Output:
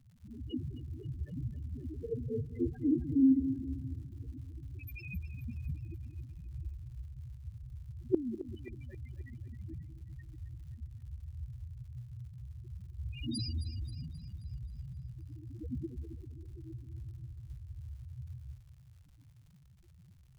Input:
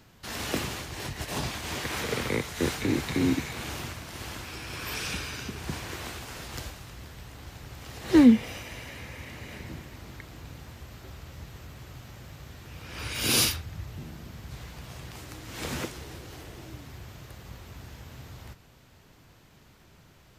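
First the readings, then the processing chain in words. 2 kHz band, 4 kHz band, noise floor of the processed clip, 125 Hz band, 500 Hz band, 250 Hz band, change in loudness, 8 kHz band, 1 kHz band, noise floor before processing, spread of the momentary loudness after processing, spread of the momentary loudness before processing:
-23.0 dB, -19.0 dB, -60 dBFS, -2.0 dB, -8.0 dB, -7.0 dB, -10.5 dB, -27.5 dB, under -30 dB, -57 dBFS, 13 LU, 19 LU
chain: notches 50/100/150/200 Hz; dynamic EQ 1000 Hz, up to -6 dB, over -45 dBFS, Q 0.74; loudest bins only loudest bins 2; flipped gate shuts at -19 dBFS, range -25 dB; crackle 180/s -61 dBFS; split-band echo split 340 Hz, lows 0.199 s, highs 0.266 s, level -12 dB; gain +4 dB

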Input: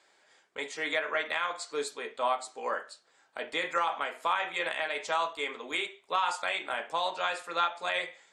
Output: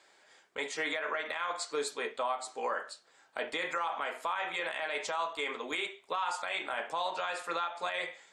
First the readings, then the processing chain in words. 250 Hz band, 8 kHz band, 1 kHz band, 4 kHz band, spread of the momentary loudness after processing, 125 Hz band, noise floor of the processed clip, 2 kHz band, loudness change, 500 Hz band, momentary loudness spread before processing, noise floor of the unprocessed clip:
-1.0 dB, +0.5 dB, -3.5 dB, -3.5 dB, 4 LU, n/a, -64 dBFS, -3.0 dB, -3.0 dB, -2.0 dB, 7 LU, -66 dBFS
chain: dynamic EQ 970 Hz, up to +3 dB, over -41 dBFS, Q 0.83; compressor, threshold -29 dBFS, peak gain reduction 9 dB; limiter -25 dBFS, peak gain reduction 8 dB; gain +2 dB

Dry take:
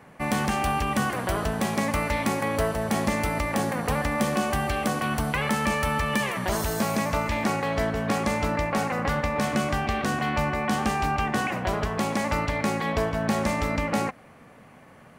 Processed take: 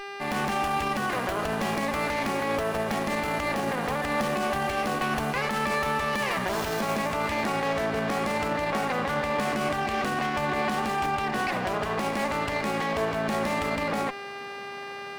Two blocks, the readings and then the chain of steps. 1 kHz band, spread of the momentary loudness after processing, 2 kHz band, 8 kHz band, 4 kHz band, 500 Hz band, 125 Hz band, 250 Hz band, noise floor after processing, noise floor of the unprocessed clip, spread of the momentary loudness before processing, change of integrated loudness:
0.0 dB, 2 LU, 0.0 dB, -5.0 dB, 0.0 dB, -0.5 dB, -6.5 dB, -4.0 dB, -38 dBFS, -51 dBFS, 2 LU, -1.5 dB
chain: opening faded in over 0.50 s; buzz 400 Hz, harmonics 7, -42 dBFS -1 dB/oct; limiter -20.5 dBFS, peak gain reduction 9.5 dB; HPF 270 Hz 6 dB/oct; running maximum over 5 samples; gain +4 dB

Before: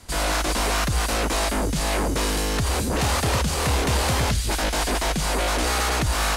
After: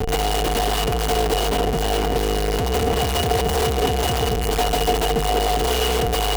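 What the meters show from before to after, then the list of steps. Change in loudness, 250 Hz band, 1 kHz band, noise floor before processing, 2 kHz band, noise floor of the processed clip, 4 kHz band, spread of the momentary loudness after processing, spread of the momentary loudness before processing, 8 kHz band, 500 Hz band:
+2.0 dB, +1.0 dB, +4.0 dB, -26 dBFS, -2.5 dB, -22 dBFS, +2.5 dB, 2 LU, 2 LU, -2.5 dB, +7.0 dB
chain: self-modulated delay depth 0.36 ms; low shelf 280 Hz +6.5 dB; limiter -23 dBFS, peak gain reduction 13.5 dB; Schmitt trigger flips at -41.5 dBFS; small resonant body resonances 450/720/2900 Hz, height 17 dB, ringing for 85 ms; gain +7 dB

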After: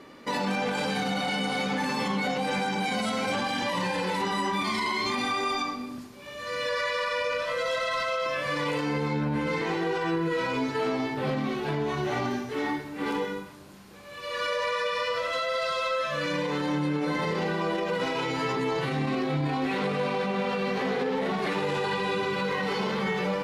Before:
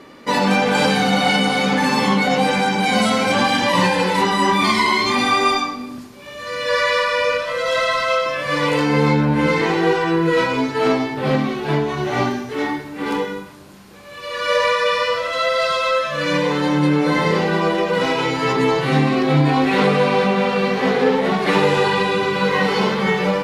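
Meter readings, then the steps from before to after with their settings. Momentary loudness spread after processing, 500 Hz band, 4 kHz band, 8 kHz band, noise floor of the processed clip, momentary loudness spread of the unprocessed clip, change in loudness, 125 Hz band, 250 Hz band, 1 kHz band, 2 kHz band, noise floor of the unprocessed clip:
3 LU, -10.5 dB, -10.5 dB, -10.5 dB, -42 dBFS, 6 LU, -10.5 dB, -11.0 dB, -10.5 dB, -10.5 dB, -10.5 dB, -36 dBFS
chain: limiter -14 dBFS, peak gain reduction 9.5 dB; gain -6 dB

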